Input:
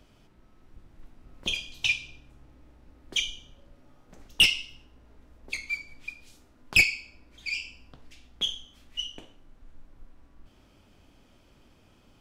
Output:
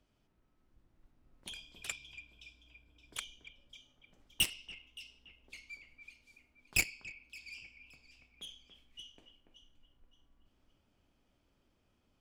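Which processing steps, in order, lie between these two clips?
1.47–3.24 s: rippled EQ curve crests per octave 1.7, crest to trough 10 dB; echo whose repeats swap between lows and highs 285 ms, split 2.5 kHz, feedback 53%, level -7 dB; Chebyshev shaper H 3 -7 dB, 8 -42 dB, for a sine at -10 dBFS; trim -7 dB

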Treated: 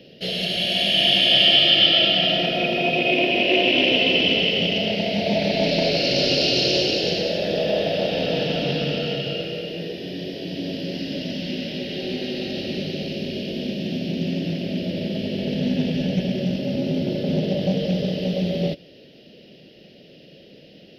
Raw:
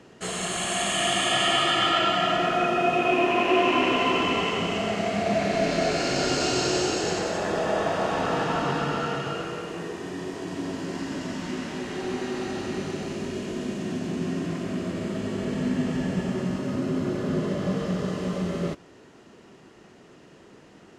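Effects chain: FFT filter 110 Hz 0 dB, 160 Hz +6 dB, 390 Hz 0 dB, 560 Hz +10 dB, 1.1 kHz -26 dB, 1.5 kHz -10 dB, 3 kHz +12 dB, 5.2 kHz +9 dB, 7.6 kHz -28 dB, 12 kHz +9 dB; loudspeaker Doppler distortion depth 0.18 ms

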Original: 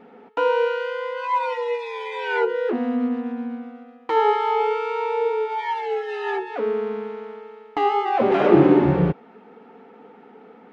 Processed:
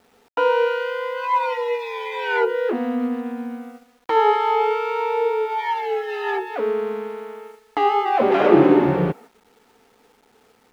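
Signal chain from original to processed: high-pass 250 Hz 6 dB/octave; gate -41 dBFS, range -13 dB; bit crusher 10-bit; trim +2.5 dB

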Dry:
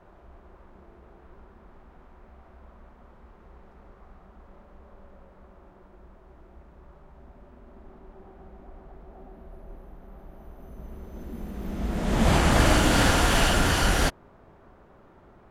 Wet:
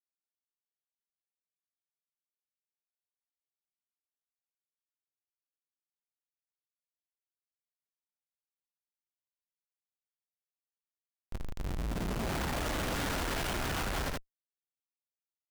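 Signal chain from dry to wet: Schmitt trigger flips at -28.5 dBFS; early reflections 20 ms -15 dB, 77 ms -7 dB; saturation -34 dBFS, distortion -10 dB; trim +2 dB

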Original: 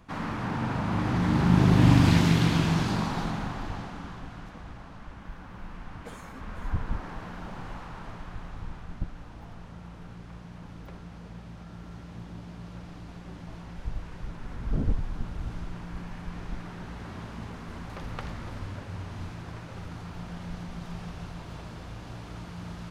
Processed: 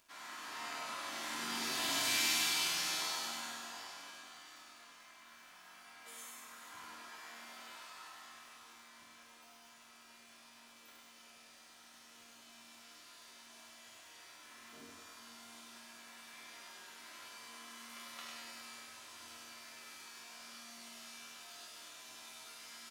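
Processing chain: differentiator; chord resonator D#2 minor, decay 0.77 s; on a send: feedback delay 99 ms, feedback 56%, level -3.5 dB; on the sum: level rider gain up to 3 dB; high-pass 180 Hz 12 dB/octave; crackle 410 per s -74 dBFS; comb 3 ms, depth 41%; trim +17 dB

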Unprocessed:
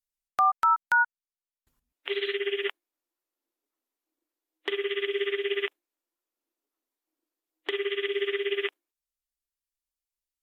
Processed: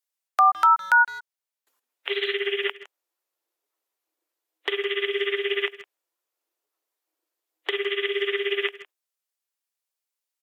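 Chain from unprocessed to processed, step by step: high-pass 410 Hz 24 dB/octave; speakerphone echo 160 ms, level -16 dB; trim +5 dB

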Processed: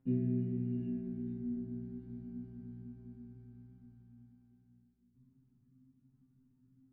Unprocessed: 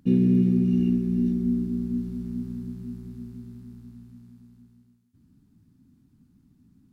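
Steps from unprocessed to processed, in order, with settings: low-pass 1.5 kHz 12 dB/octave; peaking EQ 670 Hz -3.5 dB 2.5 oct; feedback comb 130 Hz, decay 0.36 s, harmonics all, mix 100%; bucket-brigade echo 491 ms, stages 2048, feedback 63%, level -13 dB; trim +2.5 dB

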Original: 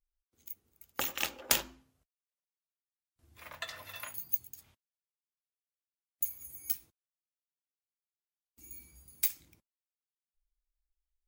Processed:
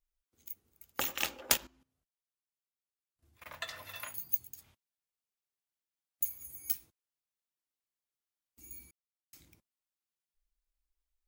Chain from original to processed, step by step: 1.54–3.46 s: level held to a coarse grid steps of 17 dB; 8.91–9.33 s: mute

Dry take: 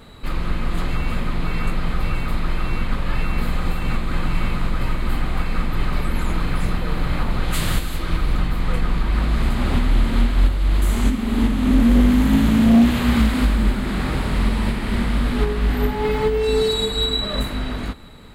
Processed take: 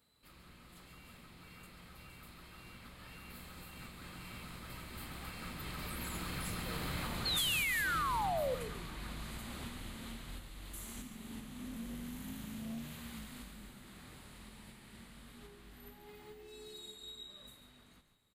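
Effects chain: Doppler pass-by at 7.06 s, 8 m/s, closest 2.4 m; high-pass 68 Hz 12 dB/octave; pre-emphasis filter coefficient 0.8; compression 4:1, threshold -47 dBFS, peak gain reduction 14 dB; painted sound fall, 7.25–8.55 s, 480–4400 Hz -44 dBFS; frequency-shifting echo 140 ms, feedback 31%, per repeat -73 Hz, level -10 dB; trim +9 dB

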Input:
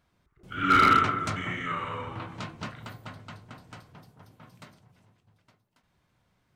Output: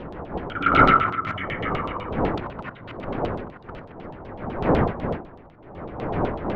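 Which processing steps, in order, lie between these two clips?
time reversed locally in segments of 55 ms; wind noise 480 Hz -29 dBFS; LFO low-pass saw down 8 Hz 690–3600 Hz

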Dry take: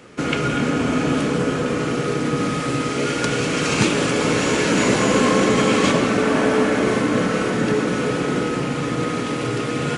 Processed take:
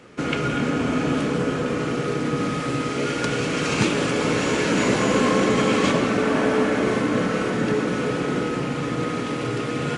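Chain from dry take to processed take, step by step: treble shelf 7.1 kHz -6 dB; trim -2.5 dB

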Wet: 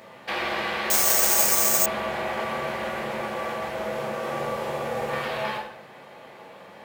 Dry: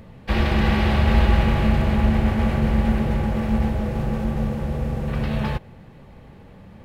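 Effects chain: high-pass 520 Hz 12 dB/octave; compression 3:1, threshold -36 dBFS, peak gain reduction 9.5 dB; 4.18–5.26 s: doubling 50 ms -3 dB; plate-style reverb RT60 0.69 s, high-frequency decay 0.8×, DRR -2.5 dB; 0.90–1.86 s: careless resampling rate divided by 6×, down none, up zero stuff; trim +4 dB

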